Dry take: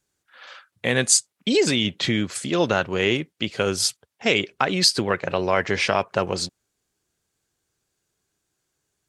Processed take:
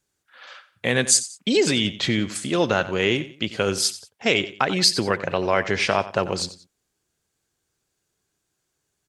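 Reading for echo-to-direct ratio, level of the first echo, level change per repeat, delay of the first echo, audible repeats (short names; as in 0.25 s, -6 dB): -15.0 dB, -15.5 dB, -9.5 dB, 90 ms, 2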